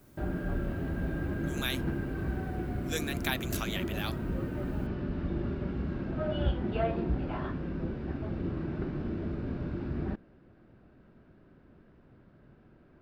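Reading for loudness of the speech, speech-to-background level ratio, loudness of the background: -37.0 LUFS, -2.5 dB, -34.5 LUFS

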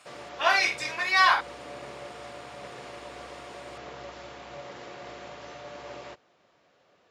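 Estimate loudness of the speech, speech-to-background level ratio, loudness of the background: -23.0 LUFS, 19.5 dB, -42.5 LUFS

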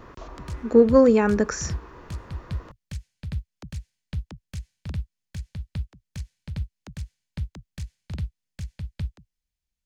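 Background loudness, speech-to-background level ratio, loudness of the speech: -37.0 LUFS, 18.0 dB, -19.0 LUFS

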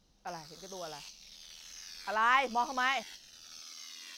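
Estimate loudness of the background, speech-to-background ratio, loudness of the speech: -47.5 LUFS, 17.5 dB, -30.0 LUFS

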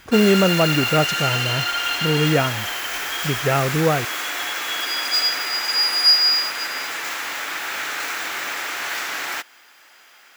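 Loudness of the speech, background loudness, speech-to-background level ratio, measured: -21.0 LUFS, -21.0 LUFS, 0.0 dB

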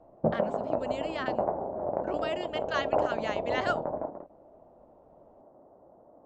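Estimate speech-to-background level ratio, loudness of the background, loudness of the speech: -4.5 dB, -32.0 LUFS, -36.5 LUFS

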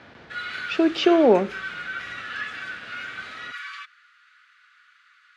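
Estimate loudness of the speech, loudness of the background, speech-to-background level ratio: -20.0 LUFS, -33.5 LUFS, 13.5 dB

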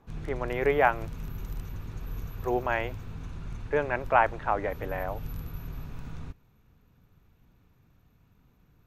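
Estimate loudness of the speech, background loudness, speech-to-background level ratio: -28.5 LUFS, -41.0 LUFS, 12.5 dB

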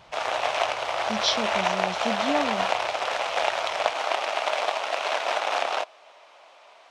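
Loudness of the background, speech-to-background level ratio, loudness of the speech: -26.0 LUFS, -4.0 dB, -30.0 LUFS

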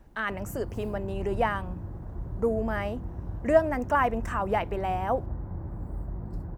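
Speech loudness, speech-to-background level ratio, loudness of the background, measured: -29.0 LUFS, 9.5 dB, -38.5 LUFS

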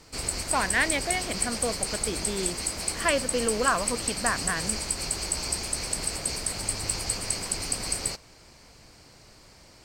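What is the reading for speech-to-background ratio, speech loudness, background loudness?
-0.5 dB, -29.0 LUFS, -28.5 LUFS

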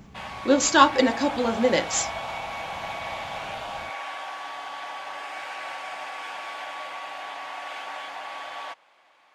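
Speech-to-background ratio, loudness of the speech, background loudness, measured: 12.0 dB, -22.0 LUFS, -34.0 LUFS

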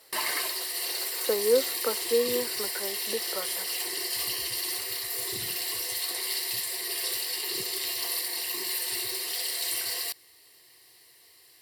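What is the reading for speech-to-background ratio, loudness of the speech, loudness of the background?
-1.0 dB, -30.0 LUFS, -29.0 LUFS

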